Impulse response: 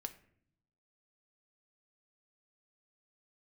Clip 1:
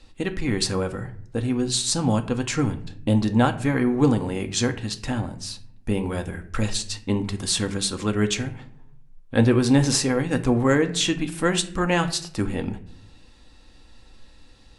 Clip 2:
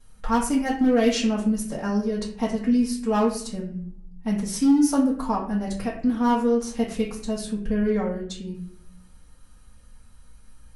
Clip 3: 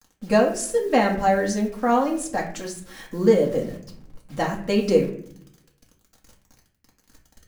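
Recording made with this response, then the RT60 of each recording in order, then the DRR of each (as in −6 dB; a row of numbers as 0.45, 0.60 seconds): 1; 0.60, 0.60, 0.60 seconds; 7.0, −11.0, −2.0 decibels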